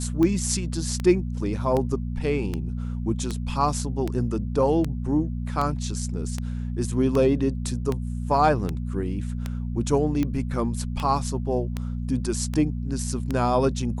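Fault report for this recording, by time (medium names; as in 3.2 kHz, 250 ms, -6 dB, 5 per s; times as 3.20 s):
hum 60 Hz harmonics 4 -29 dBFS
tick 78 rpm -14 dBFS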